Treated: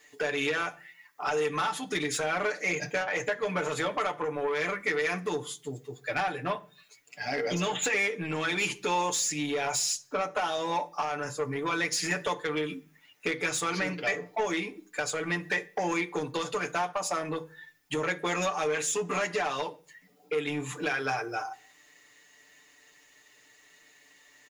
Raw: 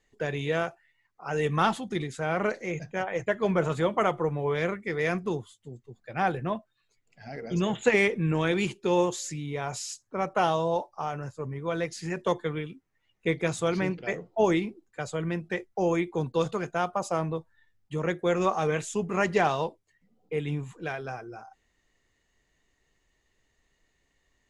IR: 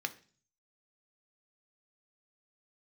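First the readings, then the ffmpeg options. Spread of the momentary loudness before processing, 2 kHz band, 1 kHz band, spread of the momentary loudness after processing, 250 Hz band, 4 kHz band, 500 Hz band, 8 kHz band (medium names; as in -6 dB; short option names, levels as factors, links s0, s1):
11 LU, +3.0 dB, -1.0 dB, 8 LU, -5.0 dB, +5.0 dB, -3.5 dB, +8.5 dB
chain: -filter_complex "[0:a]highpass=f=490:p=1,highshelf=f=8100:g=11,aecho=1:1:6.8:0.89,acompressor=threshold=0.0178:ratio=8,asoftclip=type=tanh:threshold=0.0211,asplit=2[s0][s1];[1:a]atrim=start_sample=2205[s2];[s1][s2]afir=irnorm=-1:irlink=0,volume=1.19[s3];[s0][s3]amix=inputs=2:normalize=0,volume=1.78"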